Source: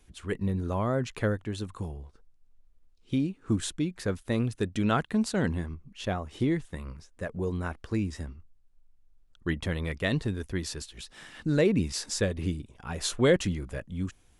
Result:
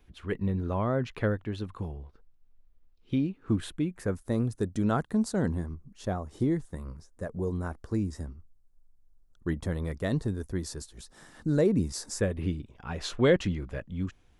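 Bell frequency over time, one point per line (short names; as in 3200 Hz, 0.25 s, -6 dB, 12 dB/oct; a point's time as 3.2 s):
bell -14.5 dB 1.2 oct
3.51 s 8200 Hz
4.29 s 2700 Hz
12.06 s 2700 Hz
12.56 s 9700 Hz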